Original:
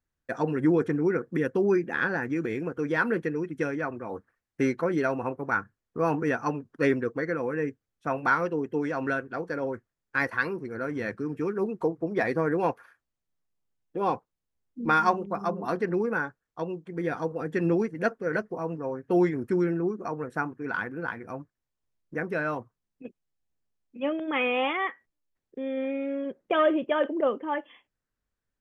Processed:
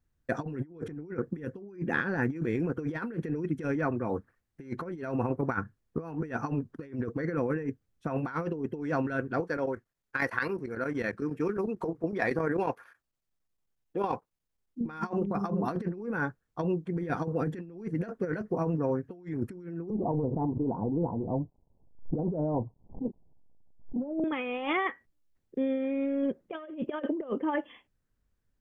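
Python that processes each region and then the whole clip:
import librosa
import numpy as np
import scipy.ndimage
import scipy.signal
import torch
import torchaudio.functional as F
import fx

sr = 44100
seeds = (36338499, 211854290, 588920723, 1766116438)

y = fx.chain(x, sr, fx.low_shelf(hz=340.0, db=-11.0),
    fx.chopper(hz=11.0, depth_pct=60, duty_pct=85), at=(9.4, 14.81))
y = fx.chain(y, sr, fx.law_mismatch(coded='mu'),
    fx.steep_lowpass(hz=950.0, slope=72),
    fx.pre_swell(db_per_s=150.0), at=(19.9, 24.24))
y = fx.low_shelf(y, sr, hz=310.0, db=10.5)
y = fx.over_compress(y, sr, threshold_db=-27.0, ratio=-0.5)
y = y * 10.0 ** (-3.5 / 20.0)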